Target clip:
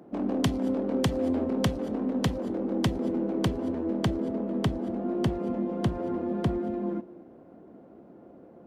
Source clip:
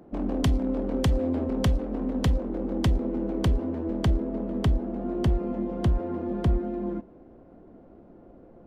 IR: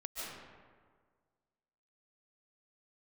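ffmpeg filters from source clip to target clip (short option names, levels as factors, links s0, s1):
-filter_complex "[0:a]highpass=150,asplit=2[s0][s1];[s1]bass=f=250:g=12,treble=f=4000:g=3[s2];[1:a]atrim=start_sample=2205,atrim=end_sample=6615,asetrate=27783,aresample=44100[s3];[s2][s3]afir=irnorm=-1:irlink=0,volume=0.133[s4];[s0][s4]amix=inputs=2:normalize=0"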